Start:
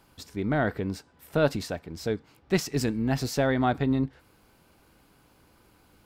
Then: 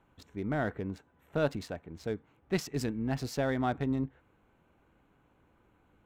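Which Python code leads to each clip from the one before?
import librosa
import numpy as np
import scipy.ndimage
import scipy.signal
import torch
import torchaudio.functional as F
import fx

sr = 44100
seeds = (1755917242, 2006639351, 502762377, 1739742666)

y = fx.wiener(x, sr, points=9)
y = y * librosa.db_to_amplitude(-6.0)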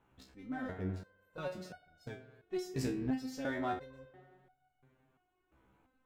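y = fx.rev_spring(x, sr, rt60_s=1.9, pass_ms=(43, 52), chirp_ms=70, drr_db=11.0)
y = fx.resonator_held(y, sr, hz=2.9, low_hz=65.0, high_hz=730.0)
y = y * librosa.db_to_amplitude(5.0)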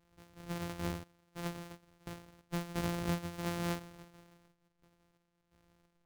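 y = np.r_[np.sort(x[:len(x) // 256 * 256].reshape(-1, 256), axis=1).ravel(), x[len(x) // 256 * 256:]]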